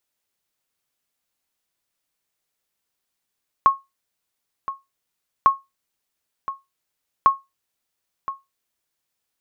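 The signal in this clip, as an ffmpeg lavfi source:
ffmpeg -f lavfi -i "aevalsrc='0.531*(sin(2*PI*1090*mod(t,1.8))*exp(-6.91*mod(t,1.8)/0.2)+0.2*sin(2*PI*1090*max(mod(t,1.8)-1.02,0))*exp(-6.91*max(mod(t,1.8)-1.02,0)/0.2))':duration=5.4:sample_rate=44100" out.wav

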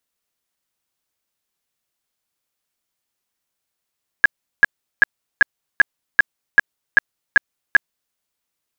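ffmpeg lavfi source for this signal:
ffmpeg -f lavfi -i "aevalsrc='0.562*sin(2*PI*1660*mod(t,0.39))*lt(mod(t,0.39),26/1660)':duration=3.9:sample_rate=44100" out.wav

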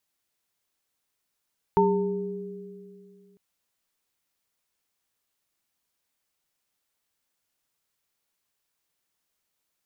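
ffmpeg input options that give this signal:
ffmpeg -f lavfi -i "aevalsrc='0.0708*pow(10,-3*t/2.72)*sin(2*PI*188*t)+0.119*pow(10,-3*t/2.35)*sin(2*PI*405*t)+0.126*pow(10,-3*t/0.64)*sin(2*PI*903*t)':duration=1.6:sample_rate=44100" out.wav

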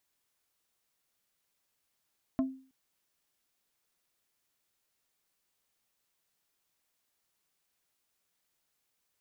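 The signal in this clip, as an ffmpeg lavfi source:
ffmpeg -f lavfi -i "aevalsrc='0.0708*pow(10,-3*t/0.42)*sin(2*PI*264*t)+0.0282*pow(10,-3*t/0.14)*sin(2*PI*660*t)+0.0112*pow(10,-3*t/0.08)*sin(2*PI*1056*t)+0.00447*pow(10,-3*t/0.061)*sin(2*PI*1320*t)+0.00178*pow(10,-3*t/0.044)*sin(2*PI*1716*t)':duration=0.32:sample_rate=44100" out.wav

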